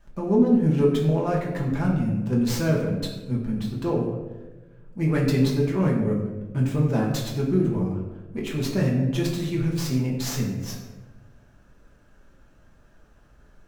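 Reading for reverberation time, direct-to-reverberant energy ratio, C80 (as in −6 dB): 1.3 s, −3.5 dB, 6.0 dB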